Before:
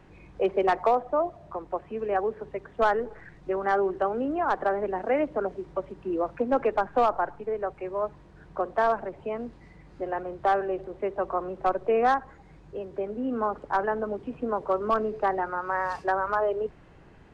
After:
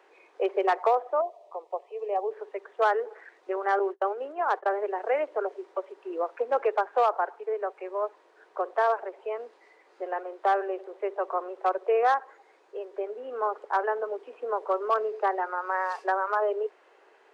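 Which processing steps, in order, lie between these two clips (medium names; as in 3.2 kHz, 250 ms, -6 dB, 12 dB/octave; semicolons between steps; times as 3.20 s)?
3.79–4.74 s: gate -28 dBFS, range -35 dB; elliptic high-pass 400 Hz, stop band 80 dB; 1.21–2.31 s: static phaser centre 630 Hz, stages 4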